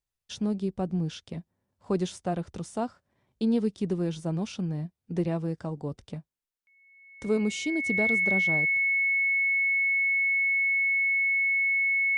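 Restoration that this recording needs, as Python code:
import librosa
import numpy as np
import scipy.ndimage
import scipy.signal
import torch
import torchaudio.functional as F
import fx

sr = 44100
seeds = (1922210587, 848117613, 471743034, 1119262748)

y = fx.notch(x, sr, hz=2200.0, q=30.0)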